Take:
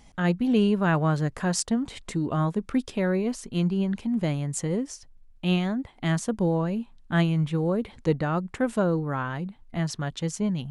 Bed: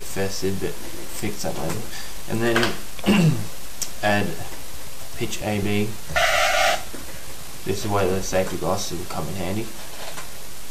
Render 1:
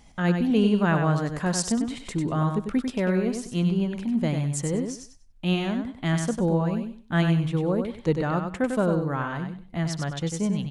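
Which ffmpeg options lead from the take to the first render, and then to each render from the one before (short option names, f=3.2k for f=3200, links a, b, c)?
-af "aecho=1:1:97|194|291:0.501|0.11|0.0243"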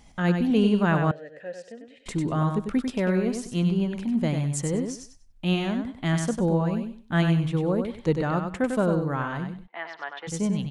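-filter_complex "[0:a]asettb=1/sr,asplit=3[a][b][c];[a]atrim=end=1.114[d];[b]atrim=start=1.11:end=2.06,asetpts=PTS-STARTPTS,afade=t=in:d=0.004:c=qsin,afade=t=out:st=0.946:d=0.004:c=qsin,asplit=3[e][f][g];[e]bandpass=f=530:t=q:w=8,volume=0dB[h];[f]bandpass=f=1.84k:t=q:w=8,volume=-6dB[i];[g]bandpass=f=2.48k:t=q:w=8,volume=-9dB[j];[h][i][j]amix=inputs=3:normalize=0[k];[c]atrim=start=2.056[l];[d][k]acrossfade=d=0.004:c1=hsin:c2=qsin[m];[m][l]acrossfade=d=0.004:c1=qsin:c2=hsin,asplit=3[n][o][p];[n]afade=t=out:st=9.66:d=0.02[q];[o]highpass=f=480:w=0.5412,highpass=f=480:w=1.3066,equalizer=f=560:t=q:w=4:g=-8,equalizer=f=920:t=q:w=4:g=5,equalizer=f=1.8k:t=q:w=4:g=5,lowpass=f=3.1k:w=0.5412,lowpass=f=3.1k:w=1.3066,afade=t=in:st=9.66:d=0.02,afade=t=out:st=10.27:d=0.02[r];[p]afade=t=in:st=10.27:d=0.02[s];[q][r][s]amix=inputs=3:normalize=0"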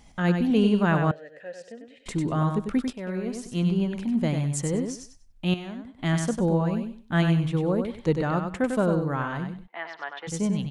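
-filter_complex "[0:a]asettb=1/sr,asplit=3[a][b][c];[a]atrim=end=1.144[d];[b]atrim=start=1.14:end=1.61,asetpts=PTS-STARTPTS,afade=t=in:d=0.004:c=qsin,afade=t=out:st=0.466:d=0.004:c=qsin,lowshelf=f=440:g=-6[e];[c]atrim=start=1.606[f];[d][e]acrossfade=d=0.004:c1=hsin:c2=qsin[g];[g][f]acrossfade=d=0.004:c1=qsin:c2=hsin,asplit=4[h][i][j][k];[h]atrim=end=2.93,asetpts=PTS-STARTPTS,afade=t=out:st=2.926:d=0.004:c=hsin:silence=0.223872[l];[i]atrim=start=2.93:end=5.542,asetpts=PTS-STARTPTS,afade=t=in:d=0.78:silence=0.223872[m];[j]atrim=start=5.538:end=5.992,asetpts=PTS-STARTPTS,volume=-9.5dB[n];[k]atrim=start=5.988[o];[l][m]concat=n=2:v=0:a=1[p];[p][n]acrossfade=d=0.004:c1=hsin:c2=hsin[q];[q][o]acrossfade=d=0.004:c1=hsin:c2=hsin"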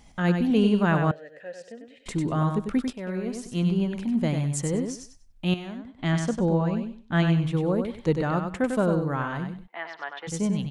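-filter_complex "[0:a]asettb=1/sr,asplit=3[a][b][c];[a]atrim=end=5.794[d];[b]atrim=start=5.79:end=7.46,asetpts=PTS-STARTPTS,afade=t=in:d=0.004:c=qsin,afade=t=out:st=1.666:d=0.004:c=qsin,lowpass=6.9k[e];[c]atrim=start=7.456[f];[d][e]acrossfade=d=0.004:c1=hsin:c2=qsin[g];[g][f]acrossfade=d=0.004:c1=qsin:c2=hsin"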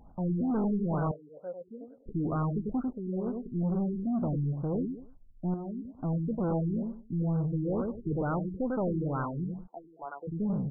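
-af "asoftclip=type=tanh:threshold=-26dB,afftfilt=real='re*lt(b*sr/1024,410*pow(1600/410,0.5+0.5*sin(2*PI*2.2*pts/sr)))':imag='im*lt(b*sr/1024,410*pow(1600/410,0.5+0.5*sin(2*PI*2.2*pts/sr)))':win_size=1024:overlap=0.75"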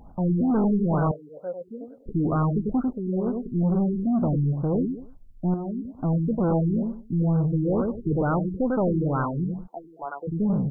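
-af "volume=7dB"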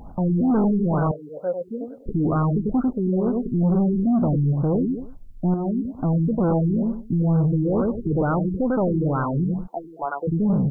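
-af "alimiter=limit=-23dB:level=0:latency=1:release=131,acontrast=87"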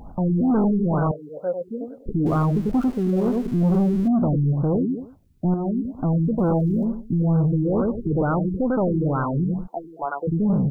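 -filter_complex "[0:a]asettb=1/sr,asplit=3[a][b][c];[a]atrim=end=2.264[d];[b]atrim=start=2.26:end=4.08,asetpts=PTS-STARTPTS,afade=t=in:d=0.004:c=qsin,afade=t=out:st=1.816:d=0.004:c=qsin,aeval=exprs='val(0)+0.5*0.0158*sgn(val(0))':c=same[e];[c]atrim=start=4.076[f];[d][e]acrossfade=d=0.004:c1=hsin:c2=qsin[g];[g][f]acrossfade=d=0.004:c1=qsin:c2=hsin,asettb=1/sr,asplit=3[h][i][j];[h]atrim=end=4.774[k];[i]atrim=start=4.77:end=5.45,asetpts=PTS-STARTPTS,afade=t=in:d=0.004:c=qsin,afade=t=out:st=0.676:d=0.004:c=qsin,highpass=85[l];[j]atrim=start=5.446[m];[k][l]acrossfade=d=0.004:c1=hsin:c2=qsin[n];[n][m]acrossfade=d=0.004:c1=qsin:c2=hsin,asettb=1/sr,asplit=3[o][p][q];[o]atrim=end=6.384[r];[p]atrim=start=6.38:end=6.85,asetpts=PTS-STARTPTS,afade=t=in:d=0.004:c=qsin,afade=t=out:st=0.466:d=0.004:c=qsin,aeval=exprs='val(0)*gte(abs(val(0)),0.00422)':c=same[s];[q]atrim=start=6.846[t];[r][s]acrossfade=d=0.004:c1=hsin:c2=qsin[u];[u][t]acrossfade=d=0.004:c1=qsin:c2=hsin"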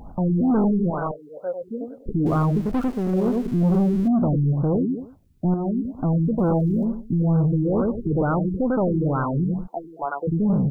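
-filter_complex "[0:a]asettb=1/sr,asplit=3[a][b][c];[a]atrim=end=0.904[d];[b]atrim=start=0.9:end=1.63,asetpts=PTS-STARTPTS,afade=t=in:d=0.004:c=qsin,afade=t=out:st=0.726:d=0.004:c=qsin,equalizer=f=83:w=0.34:g=-13[e];[c]atrim=start=1.626[f];[d][e]acrossfade=d=0.004:c1=hsin:c2=qsin[g];[g][f]acrossfade=d=0.004:c1=qsin:c2=hsin,asettb=1/sr,asplit=3[h][i][j];[h]atrim=end=2.604[k];[i]atrim=start=2.6:end=3.14,asetpts=PTS-STARTPTS,afade=t=in:d=0.004:c=qsin,afade=t=out:st=0.536:d=0.004:c=qsin,aeval=exprs='clip(val(0),-1,0.0596)':c=same[l];[j]atrim=start=3.136[m];[k][l]acrossfade=d=0.004:c1=hsin:c2=qsin[n];[n][m]acrossfade=d=0.004:c1=qsin:c2=hsin"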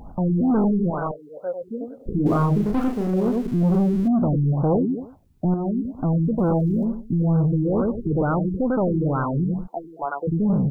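-filter_complex "[0:a]asettb=1/sr,asplit=3[a][b][c];[a]atrim=end=1.964[d];[b]atrim=start=1.96:end=3.07,asetpts=PTS-STARTPTS,afade=t=in:d=0.004:c=qsin,afade=t=out:st=1.106:d=0.004:c=qsin,asplit=2[e][f];[f]adelay=34,volume=-4dB[g];[e][g]amix=inputs=2:normalize=0,atrim=end_sample=48951[h];[c]atrim=start=3.066[i];[d][h]acrossfade=d=0.004:c1=hsin:c2=qsin[j];[j][i]acrossfade=d=0.004:c1=qsin:c2=hsin,asettb=1/sr,asplit=3[k][l][m];[k]atrim=end=4.524[n];[l]atrim=start=4.52:end=5.45,asetpts=PTS-STARTPTS,afade=t=in:d=0.004:c=qsin,afade=t=out:st=0.926:d=0.004:c=qsin,equalizer=f=800:t=o:w=1.1:g=8.5[o];[m]atrim=start=5.446[p];[n][o]acrossfade=d=0.004:c1=hsin:c2=qsin[q];[q][p]acrossfade=d=0.004:c1=qsin:c2=hsin"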